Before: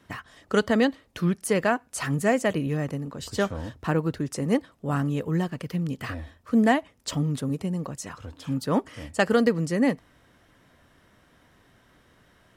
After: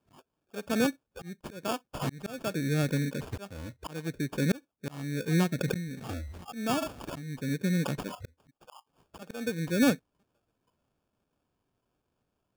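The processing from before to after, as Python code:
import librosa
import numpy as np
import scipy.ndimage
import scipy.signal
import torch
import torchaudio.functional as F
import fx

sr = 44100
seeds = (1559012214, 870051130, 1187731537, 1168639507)

p1 = fx.brickwall_bandstop(x, sr, low_hz=1900.0, high_hz=7400.0)
p2 = fx.peak_eq(p1, sr, hz=12000.0, db=-6.0, octaves=0.2)
p3 = fx.rider(p2, sr, range_db=4, speed_s=2.0)
p4 = p2 + (p3 * librosa.db_to_amplitude(-1.5))
p5 = fx.cheby1_highpass(p4, sr, hz=880.0, order=4, at=(8.49, 9.11), fade=0.02)
p6 = p5 + fx.echo_wet_highpass(p5, sr, ms=1002, feedback_pct=30, hz=2100.0, wet_db=-21, dry=0)
p7 = fx.noise_reduce_blind(p6, sr, reduce_db=22)
p8 = fx.auto_swell(p7, sr, attack_ms=770.0)
p9 = fx.sample_hold(p8, sr, seeds[0], rate_hz=2000.0, jitter_pct=0)
p10 = fx.sustainer(p9, sr, db_per_s=45.0, at=(5.58, 7.24), fade=0.02)
y = p10 * librosa.db_to_amplitude(-2.5)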